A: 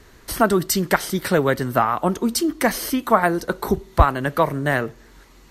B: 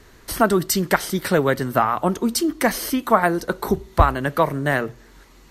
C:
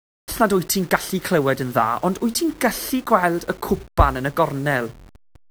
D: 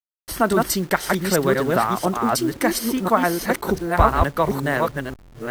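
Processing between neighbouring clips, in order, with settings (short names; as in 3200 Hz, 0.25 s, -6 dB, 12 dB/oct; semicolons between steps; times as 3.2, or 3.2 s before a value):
notches 60/120 Hz
level-crossing sampler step -37 dBFS
reverse delay 0.514 s, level -2 dB; gain -2 dB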